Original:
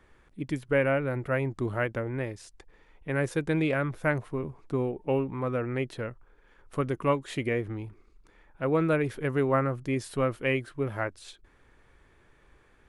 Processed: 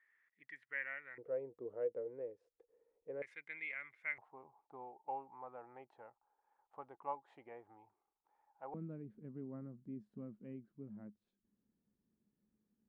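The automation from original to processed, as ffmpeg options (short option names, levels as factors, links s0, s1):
-af "asetnsamples=n=441:p=0,asendcmd='1.18 bandpass f 480;3.22 bandpass f 2100;4.18 bandpass f 830;8.74 bandpass f 210',bandpass=f=1900:t=q:w=13:csg=0"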